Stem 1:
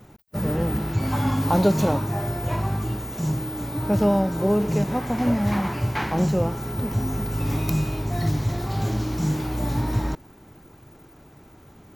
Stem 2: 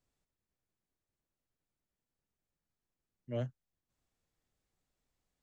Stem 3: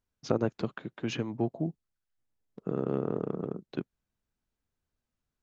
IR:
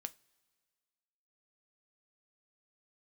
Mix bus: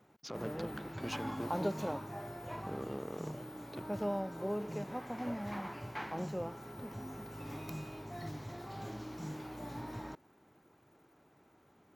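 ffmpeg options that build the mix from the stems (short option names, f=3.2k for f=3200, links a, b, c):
-filter_complex "[0:a]highshelf=f=3.6k:g=-8,volume=-11dB[a];[1:a]volume=-12.5dB,asplit=2[b][c];[2:a]alimiter=limit=-22dB:level=0:latency=1,aeval=exprs='clip(val(0),-1,0.0119)':c=same,volume=-2dB[d];[c]apad=whole_len=239264[e];[d][e]sidechaincompress=threshold=-56dB:ratio=8:attack=16:release=359[f];[a][b][f]amix=inputs=3:normalize=0,highpass=f=370:p=1"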